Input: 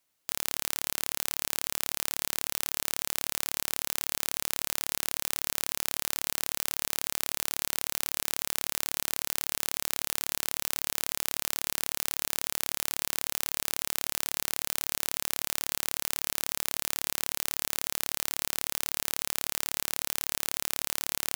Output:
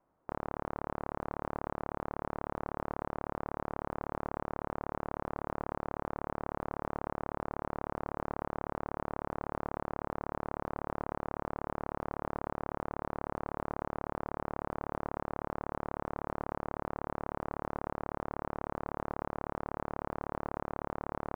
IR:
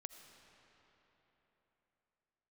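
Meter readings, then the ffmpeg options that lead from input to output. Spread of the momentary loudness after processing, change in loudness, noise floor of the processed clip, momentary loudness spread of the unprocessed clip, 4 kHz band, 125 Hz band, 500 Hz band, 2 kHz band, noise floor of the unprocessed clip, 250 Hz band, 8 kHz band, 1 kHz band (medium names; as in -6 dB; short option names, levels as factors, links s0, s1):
0 LU, -9.5 dB, -82 dBFS, 0 LU, under -30 dB, +7.0 dB, +7.0 dB, -10.0 dB, -77 dBFS, +7.0 dB, under -40 dB, +4.5 dB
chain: -af "lowpass=f=1100:w=0.5412,lowpass=f=1100:w=1.3066,alimiter=level_in=2.66:limit=0.0631:level=0:latency=1:release=432,volume=0.376,volume=4.22"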